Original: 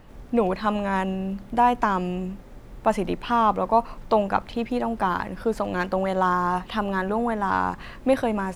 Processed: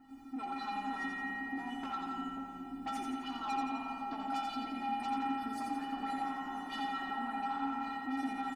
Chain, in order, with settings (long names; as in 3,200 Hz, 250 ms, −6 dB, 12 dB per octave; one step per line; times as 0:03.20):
comb filter 2.8 ms, depth 46%
harmonic and percussive parts rebalanced harmonic −12 dB
graphic EQ with 10 bands 250 Hz +8 dB, 500 Hz −4 dB, 1,000 Hz +10 dB
in parallel at −2.5 dB: compressor whose output falls as the input rises −31 dBFS
on the sum: tuned comb filter 270 Hz, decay 0.26 s, harmonics odd, mix 100%
soft clipping −35 dBFS, distortion −7 dB
on a send: echo with a time of its own for lows and highs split 720 Hz, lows 538 ms, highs 86 ms, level −3.5 dB
on the sum: spring reverb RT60 2.6 s, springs 54 ms, chirp 60 ms, DRR 2 dB